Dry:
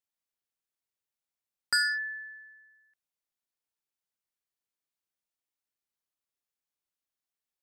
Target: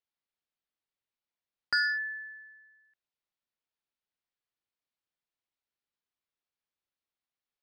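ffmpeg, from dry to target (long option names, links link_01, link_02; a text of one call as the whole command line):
ffmpeg -i in.wav -af "lowpass=frequency=4700:width=0.5412,lowpass=frequency=4700:width=1.3066" out.wav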